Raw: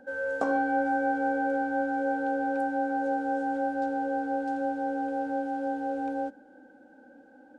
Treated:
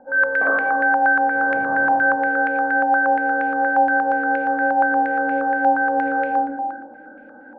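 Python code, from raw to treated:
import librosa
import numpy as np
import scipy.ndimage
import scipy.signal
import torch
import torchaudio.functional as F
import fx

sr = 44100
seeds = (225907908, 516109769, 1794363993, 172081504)

y = fx.dmg_noise_band(x, sr, seeds[0], low_hz=92.0, high_hz=910.0, level_db=-43.0, at=(1.34, 1.91), fade=0.02)
y = fx.rev_freeverb(y, sr, rt60_s=1.4, hf_ratio=0.55, predelay_ms=5, drr_db=-5.5)
y = fx.rider(y, sr, range_db=3, speed_s=0.5)
y = fx.filter_held_lowpass(y, sr, hz=8.5, low_hz=920.0, high_hz=2300.0)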